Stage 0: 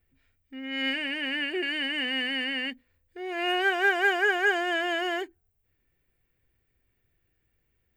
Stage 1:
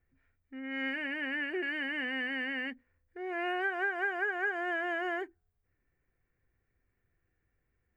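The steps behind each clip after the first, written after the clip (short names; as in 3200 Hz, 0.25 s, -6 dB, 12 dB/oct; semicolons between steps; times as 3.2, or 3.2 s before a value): resonant high shelf 2500 Hz -11 dB, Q 1.5; compressor 6:1, threshold -26 dBFS, peak gain reduction 9.5 dB; gain -3.5 dB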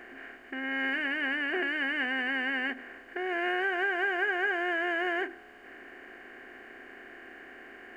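per-bin compression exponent 0.4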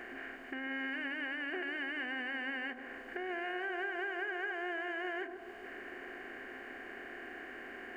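compressor 2.5:1, threshold -43 dBFS, peak gain reduction 12 dB; analogue delay 0.142 s, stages 1024, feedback 68%, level -9 dB; gain +1.5 dB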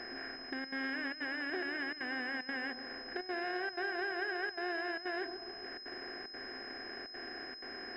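step gate "xxxxxxxx.xxxxx.x" 187 bpm -12 dB; in parallel at -7 dB: sample gate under -46 dBFS; on the sum: pulse-width modulation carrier 5100 Hz; gain -1.5 dB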